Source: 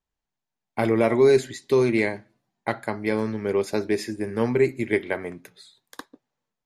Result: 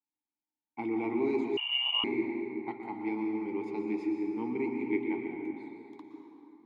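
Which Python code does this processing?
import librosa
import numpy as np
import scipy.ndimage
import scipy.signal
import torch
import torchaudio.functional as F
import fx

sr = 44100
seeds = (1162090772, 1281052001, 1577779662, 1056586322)

y = fx.vowel_filter(x, sr, vowel='u')
y = fx.rev_plate(y, sr, seeds[0], rt60_s=3.2, hf_ratio=0.55, predelay_ms=105, drr_db=1.0)
y = fx.freq_invert(y, sr, carrier_hz=3200, at=(1.57, 2.04))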